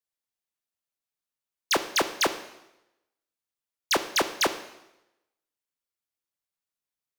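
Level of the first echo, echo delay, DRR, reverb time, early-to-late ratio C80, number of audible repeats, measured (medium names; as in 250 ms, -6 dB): no echo, no echo, 9.5 dB, 0.90 s, 14.5 dB, no echo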